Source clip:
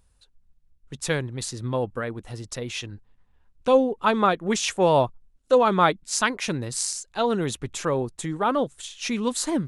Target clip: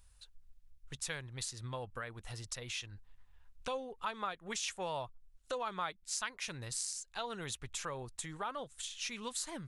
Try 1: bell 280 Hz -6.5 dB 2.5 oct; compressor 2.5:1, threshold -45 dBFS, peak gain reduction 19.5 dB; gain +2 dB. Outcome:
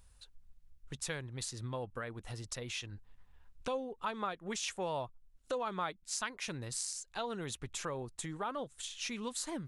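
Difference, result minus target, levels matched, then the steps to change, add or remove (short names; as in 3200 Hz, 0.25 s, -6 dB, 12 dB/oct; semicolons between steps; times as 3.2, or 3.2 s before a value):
250 Hz band +4.5 dB
change: bell 280 Hz -15.5 dB 2.5 oct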